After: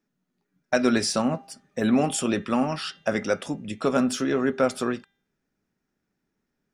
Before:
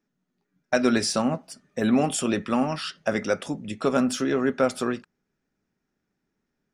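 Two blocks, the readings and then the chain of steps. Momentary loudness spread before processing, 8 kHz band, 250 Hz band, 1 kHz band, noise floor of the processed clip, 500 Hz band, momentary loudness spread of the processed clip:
8 LU, 0.0 dB, 0.0 dB, 0.0 dB, -80 dBFS, 0.0 dB, 8 LU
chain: de-hum 397.7 Hz, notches 10

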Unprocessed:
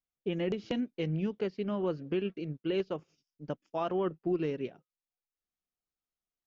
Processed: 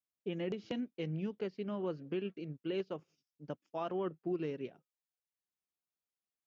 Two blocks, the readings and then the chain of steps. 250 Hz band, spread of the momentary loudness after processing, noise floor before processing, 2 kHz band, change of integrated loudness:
-5.5 dB, 8 LU, under -85 dBFS, -5.5 dB, -5.5 dB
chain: high-pass 84 Hz; trim -5.5 dB

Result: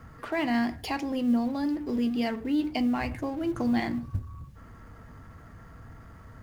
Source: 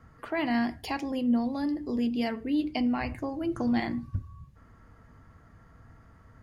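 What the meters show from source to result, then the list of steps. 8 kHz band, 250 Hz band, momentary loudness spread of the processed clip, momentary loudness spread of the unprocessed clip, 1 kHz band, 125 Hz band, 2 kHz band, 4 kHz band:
no reading, +1.0 dB, 10 LU, 7 LU, +1.0 dB, +1.5 dB, +1.0 dB, +1.0 dB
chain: companding laws mixed up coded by mu

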